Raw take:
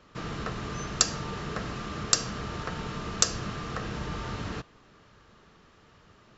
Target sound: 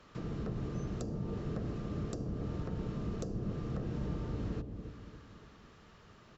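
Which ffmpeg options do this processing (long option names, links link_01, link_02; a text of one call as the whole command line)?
ffmpeg -i in.wav -filter_complex "[0:a]acrossover=split=560[link_01][link_02];[link_01]aecho=1:1:284|568|852|1136|1420|1704:0.447|0.223|0.112|0.0558|0.0279|0.014[link_03];[link_02]acompressor=threshold=-55dB:ratio=5[link_04];[link_03][link_04]amix=inputs=2:normalize=0,volume=-1.5dB" out.wav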